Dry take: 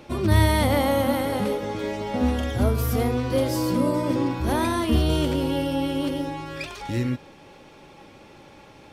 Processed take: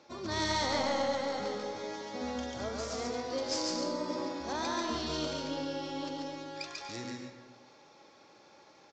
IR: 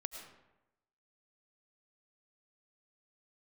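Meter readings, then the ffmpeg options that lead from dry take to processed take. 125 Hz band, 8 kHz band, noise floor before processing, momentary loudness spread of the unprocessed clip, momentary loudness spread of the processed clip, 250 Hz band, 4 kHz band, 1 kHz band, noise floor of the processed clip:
-22.5 dB, -4.5 dB, -49 dBFS, 9 LU, 10 LU, -14.0 dB, -4.0 dB, -8.0 dB, -59 dBFS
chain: -filter_complex "[0:a]highpass=f=740:p=1,highshelf=f=5700:g=-6.5,aexciter=amount=7.7:drive=7.6:freq=4300,adynamicsmooth=sensitivity=1:basefreq=2900,asplit=2[s0][s1];[1:a]atrim=start_sample=2205,adelay=141[s2];[s1][s2]afir=irnorm=-1:irlink=0,volume=1.06[s3];[s0][s3]amix=inputs=2:normalize=0,aresample=16000,aresample=44100,volume=0.422"

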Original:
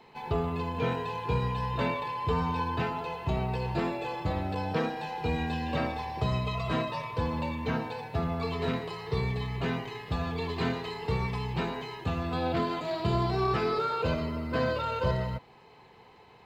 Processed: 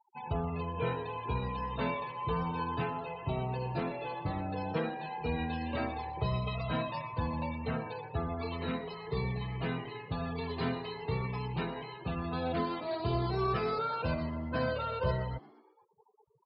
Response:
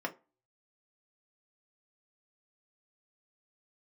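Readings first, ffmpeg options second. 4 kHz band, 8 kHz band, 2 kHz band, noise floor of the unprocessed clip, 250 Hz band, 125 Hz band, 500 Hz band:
-5.5 dB, no reading, -4.5 dB, -55 dBFS, -4.0 dB, -4.0 dB, -4.0 dB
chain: -filter_complex "[0:a]afftfilt=real='re*gte(hypot(re,im),0.01)':imag='im*gte(hypot(re,im),0.01)':win_size=1024:overlap=0.75,asplit=5[s0][s1][s2][s3][s4];[s1]adelay=118,afreqshift=84,volume=0.0794[s5];[s2]adelay=236,afreqshift=168,volume=0.0447[s6];[s3]adelay=354,afreqshift=252,volume=0.0248[s7];[s4]adelay=472,afreqshift=336,volume=0.014[s8];[s0][s5][s6][s7][s8]amix=inputs=5:normalize=0,flanger=delay=1.1:depth=6.5:regen=-48:speed=0.14:shape=sinusoidal"

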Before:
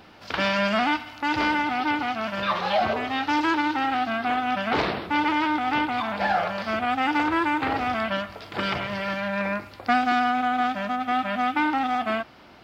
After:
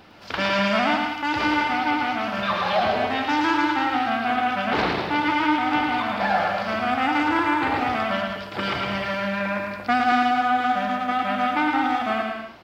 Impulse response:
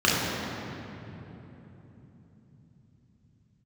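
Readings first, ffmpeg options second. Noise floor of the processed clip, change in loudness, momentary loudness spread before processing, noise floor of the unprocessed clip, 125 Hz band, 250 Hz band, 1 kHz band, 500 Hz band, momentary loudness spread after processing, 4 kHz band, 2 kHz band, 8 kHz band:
-35 dBFS, +2.0 dB, 5 LU, -47 dBFS, +2.0 dB, +2.0 dB, +2.0 dB, +2.0 dB, 5 LU, +2.0 dB, +2.0 dB, no reading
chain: -af "aecho=1:1:110|192.5|254.4|300.8|335.6:0.631|0.398|0.251|0.158|0.1"

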